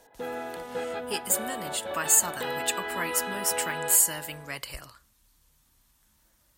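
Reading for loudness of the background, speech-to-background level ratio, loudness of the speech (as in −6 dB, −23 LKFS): −34.5 LKFS, 8.5 dB, −26.0 LKFS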